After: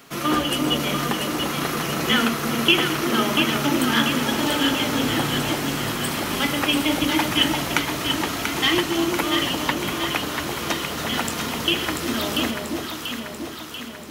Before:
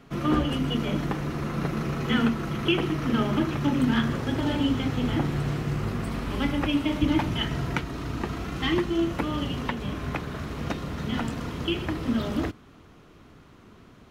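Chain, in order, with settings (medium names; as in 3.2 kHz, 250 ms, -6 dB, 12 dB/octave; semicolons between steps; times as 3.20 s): RIAA curve recording; echo whose repeats swap between lows and highs 344 ms, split 960 Hz, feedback 77%, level -3 dB; trim +6 dB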